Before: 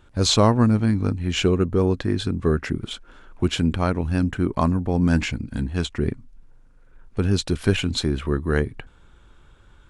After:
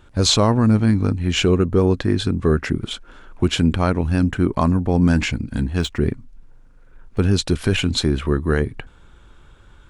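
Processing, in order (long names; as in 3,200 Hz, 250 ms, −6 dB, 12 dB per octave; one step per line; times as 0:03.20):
0:05.80–0:07.22: running median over 3 samples
boost into a limiter +9.5 dB
level −5.5 dB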